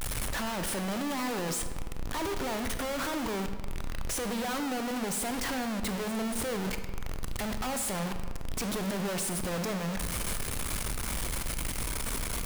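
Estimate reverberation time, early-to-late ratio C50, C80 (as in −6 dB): 1.6 s, 8.5 dB, 10.0 dB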